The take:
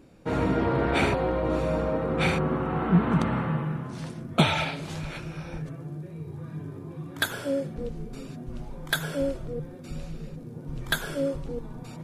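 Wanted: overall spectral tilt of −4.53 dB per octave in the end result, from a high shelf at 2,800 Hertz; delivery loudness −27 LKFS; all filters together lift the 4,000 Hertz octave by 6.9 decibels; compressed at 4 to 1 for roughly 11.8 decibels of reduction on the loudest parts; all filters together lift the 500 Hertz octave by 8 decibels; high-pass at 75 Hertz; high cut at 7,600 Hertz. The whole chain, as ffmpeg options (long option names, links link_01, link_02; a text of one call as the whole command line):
ffmpeg -i in.wav -af "highpass=75,lowpass=7600,equalizer=frequency=500:width_type=o:gain=9,highshelf=frequency=2800:gain=4.5,equalizer=frequency=4000:width_type=o:gain=5,acompressor=threshold=-27dB:ratio=4,volume=4.5dB" out.wav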